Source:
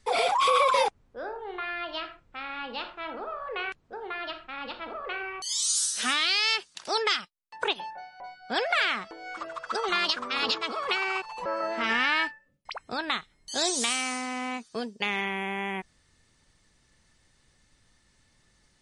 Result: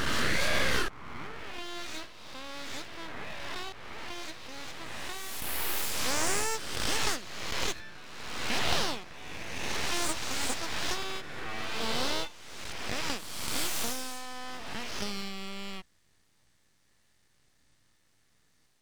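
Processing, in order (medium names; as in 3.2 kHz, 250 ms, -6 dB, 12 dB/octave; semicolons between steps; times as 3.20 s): reverse spectral sustain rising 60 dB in 1.53 s; full-wave rectifier; trim -5.5 dB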